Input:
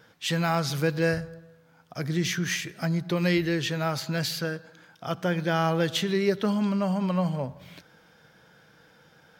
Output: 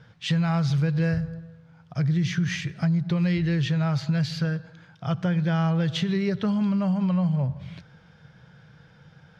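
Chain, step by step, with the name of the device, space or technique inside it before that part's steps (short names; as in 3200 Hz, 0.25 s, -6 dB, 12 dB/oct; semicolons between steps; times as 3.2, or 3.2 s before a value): jukebox (LPF 5000 Hz 12 dB/oct; resonant low shelf 200 Hz +11 dB, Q 1.5; compressor 4:1, threshold -21 dBFS, peak gain reduction 6.5 dB)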